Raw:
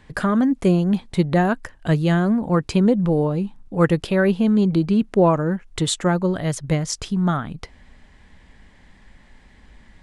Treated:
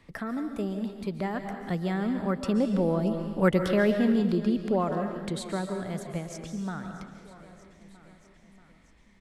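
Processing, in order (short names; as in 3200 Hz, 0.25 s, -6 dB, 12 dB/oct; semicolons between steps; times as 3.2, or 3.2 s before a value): Doppler pass-by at 3.8, 6 m/s, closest 3.8 m; speed mistake 44.1 kHz file played as 48 kHz; on a send: feedback echo 0.634 s, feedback 59%, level -24 dB; on the sum: digital reverb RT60 1 s, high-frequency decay 1×, pre-delay 0.1 s, DRR 6.5 dB; three-band squash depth 40%; gain -3 dB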